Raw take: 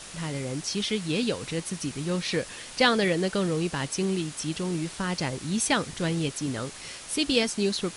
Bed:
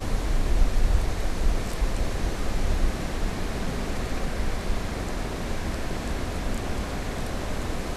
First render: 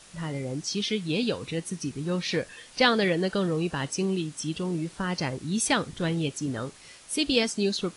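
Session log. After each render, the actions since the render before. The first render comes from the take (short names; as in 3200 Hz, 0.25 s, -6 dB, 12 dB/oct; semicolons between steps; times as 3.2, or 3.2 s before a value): noise print and reduce 9 dB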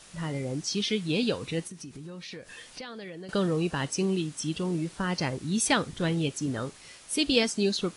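1.67–3.29 compressor, threshold -39 dBFS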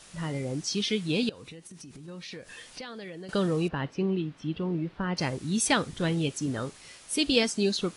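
1.29–2.08 compressor 12:1, threshold -41 dBFS; 3.68–5.17 air absorption 350 m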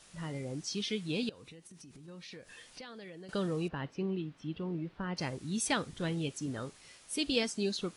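gain -7 dB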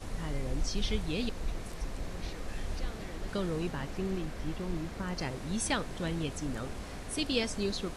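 add bed -12 dB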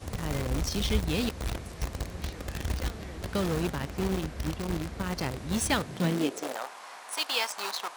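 in parallel at -5 dB: bit-crush 5-bit; on the sum: high-pass sweep 65 Hz -> 930 Hz, 5.68–6.7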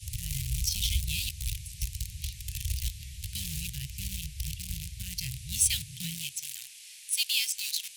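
elliptic band-stop 130–2600 Hz, stop band 40 dB; bell 12000 Hz +10.5 dB 1.7 oct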